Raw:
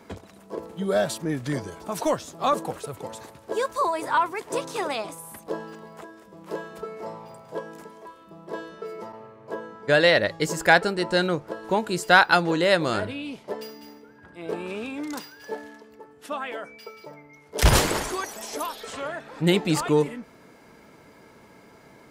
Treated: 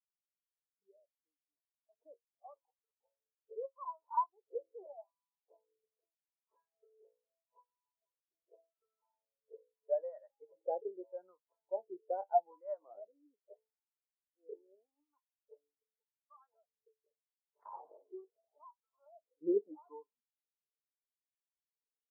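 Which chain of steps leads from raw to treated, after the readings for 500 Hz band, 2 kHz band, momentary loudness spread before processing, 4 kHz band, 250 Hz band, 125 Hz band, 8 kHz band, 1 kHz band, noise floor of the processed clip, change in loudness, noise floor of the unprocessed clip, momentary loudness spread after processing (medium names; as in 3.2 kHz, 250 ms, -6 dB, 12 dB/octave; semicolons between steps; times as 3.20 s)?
-16.0 dB, under -40 dB, 20 LU, under -40 dB, -20.5 dB, under -40 dB, under -40 dB, -16.0 dB, under -85 dBFS, -15.0 dB, -52 dBFS, 23 LU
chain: fade-in on the opening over 4.72 s; wah-wah 0.81 Hz 440–1100 Hz, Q 2.5; treble shelf 2.1 kHz -10.5 dB; low-pass that closes with the level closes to 1.4 kHz, closed at -26 dBFS; high-pass 150 Hz 12 dB/octave; flange 0.15 Hz, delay 9.7 ms, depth 1.5 ms, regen +71%; spectral contrast expander 2.5:1; trim +1 dB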